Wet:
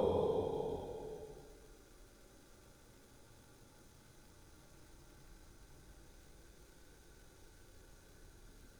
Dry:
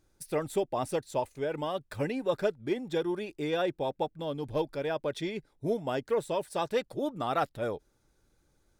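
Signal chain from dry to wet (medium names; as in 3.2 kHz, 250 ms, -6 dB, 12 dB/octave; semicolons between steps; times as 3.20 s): Paulstretch 19×, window 0.25 s, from 7.79 s; crackle 330 per s -67 dBFS; trim +9.5 dB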